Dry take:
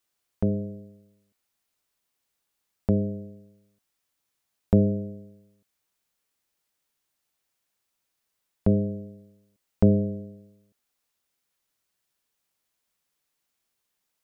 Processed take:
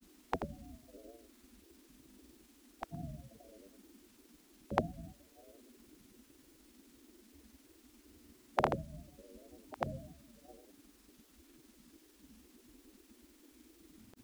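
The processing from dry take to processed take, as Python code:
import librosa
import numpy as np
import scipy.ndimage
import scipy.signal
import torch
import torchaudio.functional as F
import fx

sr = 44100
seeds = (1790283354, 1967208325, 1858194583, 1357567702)

y = fx.dmg_noise_band(x, sr, seeds[0], low_hz=72.0, high_hz=190.0, level_db=-50.0)
y = fx.spec_gate(y, sr, threshold_db=-20, keep='weak')
y = fx.granulator(y, sr, seeds[1], grain_ms=100.0, per_s=20.0, spray_ms=100.0, spread_st=3)
y = y * 10.0 ** (15.0 / 20.0)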